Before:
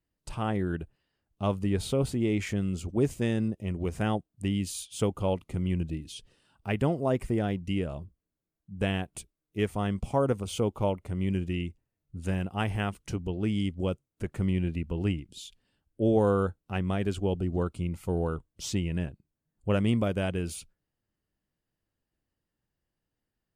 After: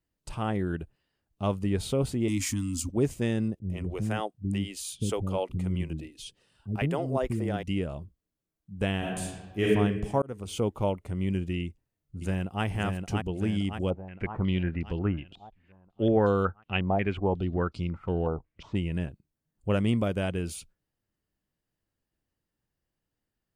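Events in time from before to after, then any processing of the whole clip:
2.28–2.89 s: FFT filter 120 Hz 0 dB, 170 Hz -11 dB, 270 Hz +12 dB, 420 Hz -26 dB, 650 Hz -22 dB, 1 kHz +5 dB, 1.5 kHz -5 dB, 3.3 kHz +2 dB, 5.1 kHz +11 dB, 11 kHz +15 dB
3.59–7.63 s: bands offset in time lows, highs 100 ms, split 320 Hz
8.98–9.65 s: reverb throw, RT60 1.3 s, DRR -6 dB
10.22–10.69 s: fade in equal-power
11.64–12.64 s: echo throw 570 ms, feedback 55%, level -3.5 dB
13.90–18.75 s: step-sequenced low-pass 5.5 Hz 790–4800 Hz

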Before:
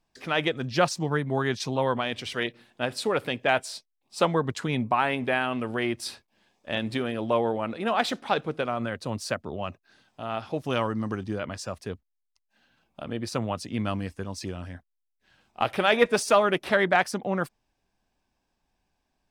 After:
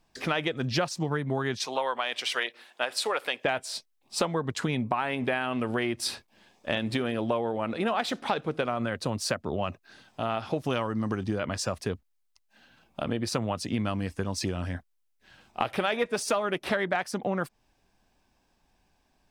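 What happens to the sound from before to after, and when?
1.65–3.45 s: high-pass 650 Hz
whole clip: compression 6:1, threshold -32 dBFS; trim +7 dB

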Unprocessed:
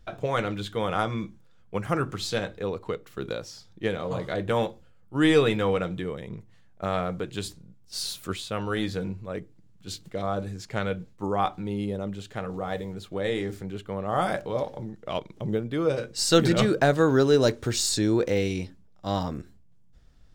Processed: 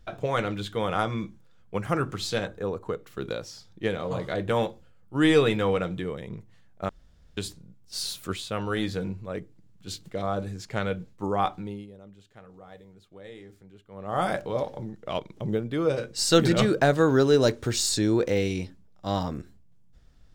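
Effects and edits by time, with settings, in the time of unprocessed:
2.47–2.99 s: time-frequency box 1.8–5.7 kHz -7 dB
6.89–7.37 s: room tone
11.53–14.24 s: dip -16.5 dB, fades 0.34 s

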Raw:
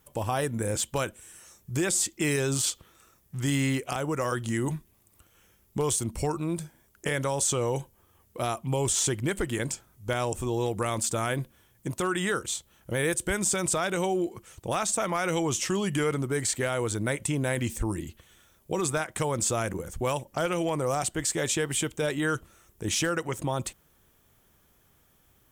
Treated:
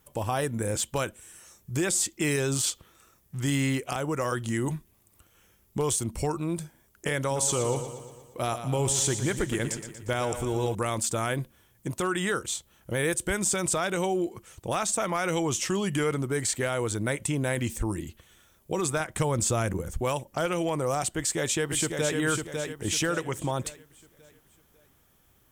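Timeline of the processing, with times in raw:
7.19–10.75 s: feedback delay 118 ms, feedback 57%, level -10 dB
19.00–19.98 s: bass shelf 160 Hz +8 dB
21.16–22.17 s: echo throw 550 ms, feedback 40%, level -4.5 dB

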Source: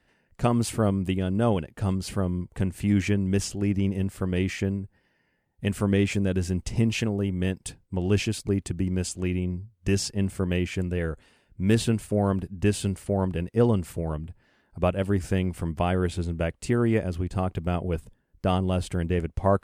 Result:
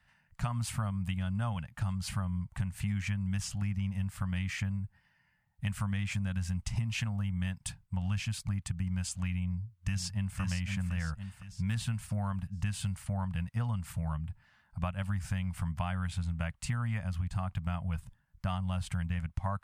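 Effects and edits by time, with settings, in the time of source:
9.42–10.40 s: echo throw 510 ms, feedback 40%, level -6.5 dB
whole clip: Chebyshev band-stop 130–1100 Hz, order 2; peaking EQ 360 Hz +9 dB 2.7 oct; compression, threshold -28 dBFS; trim -1.5 dB

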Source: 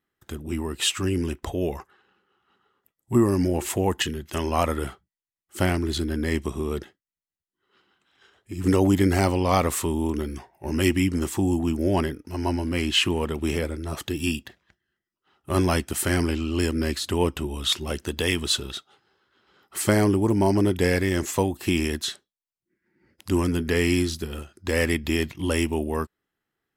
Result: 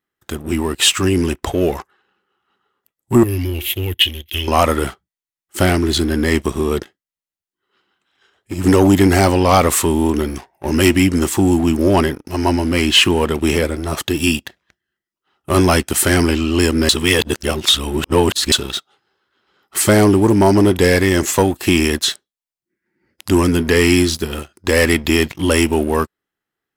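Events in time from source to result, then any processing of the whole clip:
3.23–4.48 s: FFT filter 100 Hz 0 dB, 140 Hz -20 dB, 340 Hz -9 dB, 630 Hz -25 dB, 1.2 kHz -28 dB, 2.1 kHz -3 dB, 3.3 kHz +8 dB, 4.7 kHz -10 dB, 8.2 kHz -19 dB, 12 kHz +4 dB
16.89–18.52 s: reverse
whole clip: bass shelf 240 Hz -4.5 dB; waveshaping leveller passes 2; trim +4 dB

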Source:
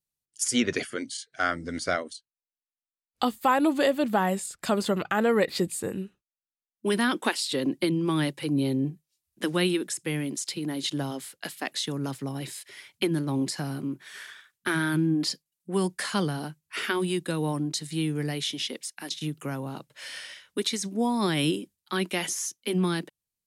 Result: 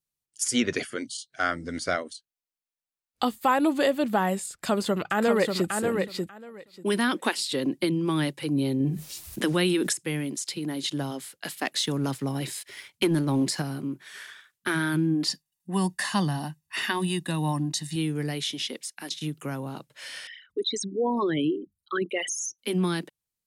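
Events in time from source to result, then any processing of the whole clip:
1.07–1.31 s: spectral selection erased 230–2800 Hz
4.51–5.69 s: echo throw 590 ms, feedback 15%, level -4.5 dB
8.80–9.93 s: level flattener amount 70%
11.47–13.62 s: waveshaping leveller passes 1
15.28–17.96 s: comb 1.1 ms, depth 70%
20.27–22.59 s: resonances exaggerated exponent 3

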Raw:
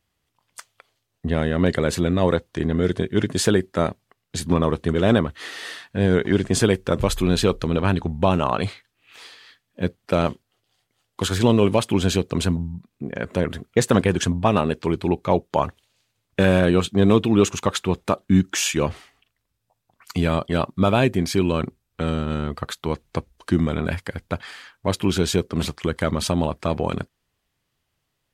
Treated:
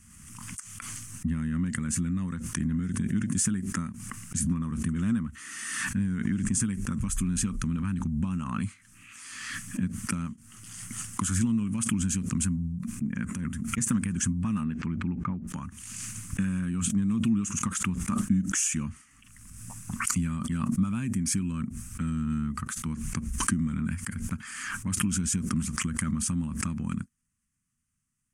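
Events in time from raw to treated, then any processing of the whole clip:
12.64–13.78 s: compressor with a negative ratio -24 dBFS
14.63–15.47 s: low-pass 3.5 kHz -> 1.3 kHz
whole clip: compression, threshold -19 dBFS; FFT filter 130 Hz 0 dB, 230 Hz +7 dB, 410 Hz -23 dB, 670 Hz -27 dB, 1.2 kHz -4 dB, 2.7 kHz -7 dB, 3.9 kHz -18 dB, 6.2 kHz +4 dB, 9.5 kHz +10 dB, 14 kHz -11 dB; swell ahead of each attack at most 33 dB/s; trim -5.5 dB

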